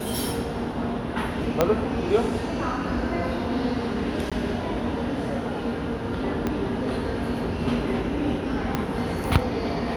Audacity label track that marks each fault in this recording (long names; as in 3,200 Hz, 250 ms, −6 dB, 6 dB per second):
1.610000	1.610000	click −5 dBFS
4.300000	4.320000	drop-out 16 ms
6.470000	6.470000	click −13 dBFS
8.750000	8.750000	click −10 dBFS